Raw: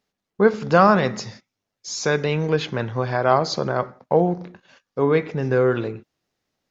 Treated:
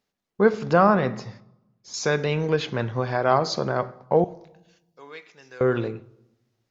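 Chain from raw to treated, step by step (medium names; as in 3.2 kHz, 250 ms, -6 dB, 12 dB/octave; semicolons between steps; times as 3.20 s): 0.73–1.94 s: low-pass 1.7 kHz 6 dB/octave; 4.24–5.61 s: differentiator; reverberation RT60 0.95 s, pre-delay 8 ms, DRR 16.5 dB; trim -2 dB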